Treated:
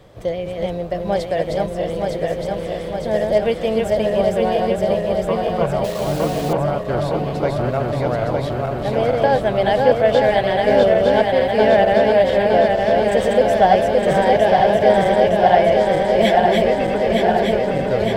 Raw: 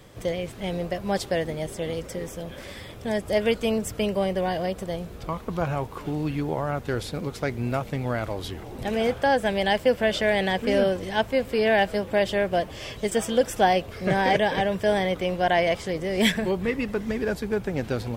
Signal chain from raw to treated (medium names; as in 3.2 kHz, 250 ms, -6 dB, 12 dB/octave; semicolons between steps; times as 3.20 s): backward echo that repeats 456 ms, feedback 83%, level -2.5 dB; treble shelf 2.3 kHz -10 dB; 5.84–6.53 s: word length cut 6-bit, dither none; fifteen-band graphic EQ 250 Hz -3 dB, 630 Hz +6 dB, 4 kHz +5 dB; trim +2.5 dB